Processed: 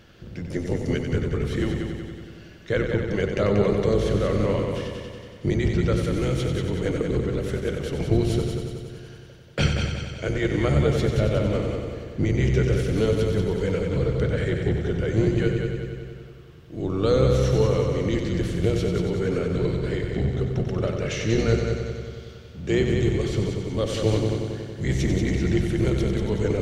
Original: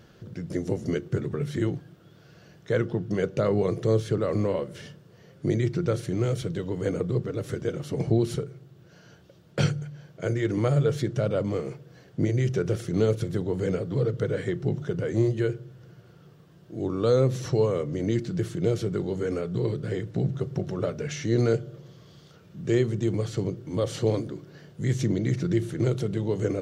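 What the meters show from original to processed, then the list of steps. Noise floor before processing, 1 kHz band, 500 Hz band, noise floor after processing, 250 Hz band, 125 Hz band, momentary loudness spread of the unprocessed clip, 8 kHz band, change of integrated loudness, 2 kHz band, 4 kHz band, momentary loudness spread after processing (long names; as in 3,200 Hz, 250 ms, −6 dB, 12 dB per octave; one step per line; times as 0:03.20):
−54 dBFS, +4.0 dB, +2.5 dB, −44 dBFS, +3.0 dB, +3.5 dB, 9 LU, +3.5 dB, +3.0 dB, +7.0 dB, +7.0 dB, 12 LU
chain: sub-octave generator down 1 octave, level −2 dB
parametric band 2,600 Hz +7 dB 1.3 octaves
mains-hum notches 60/120 Hz
echo machine with several playback heads 93 ms, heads first and second, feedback 62%, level −7.5 dB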